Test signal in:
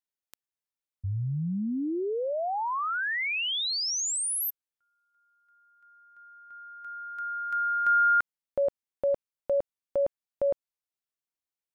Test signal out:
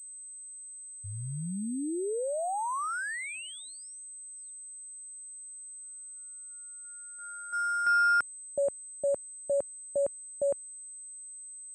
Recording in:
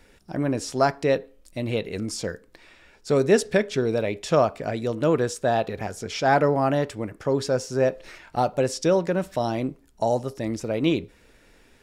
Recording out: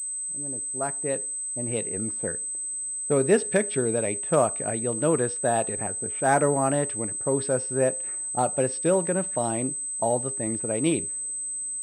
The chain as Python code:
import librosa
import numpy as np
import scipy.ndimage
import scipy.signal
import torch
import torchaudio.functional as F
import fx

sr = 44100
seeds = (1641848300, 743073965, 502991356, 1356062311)

y = fx.fade_in_head(x, sr, length_s=2.12)
y = scipy.signal.sosfilt(scipy.signal.butter(2, 83.0, 'highpass', fs=sr, output='sos'), y)
y = fx.env_lowpass(y, sr, base_hz=310.0, full_db=-20.0)
y = fx.pwm(y, sr, carrier_hz=8200.0)
y = y * librosa.db_to_amplitude(-2.0)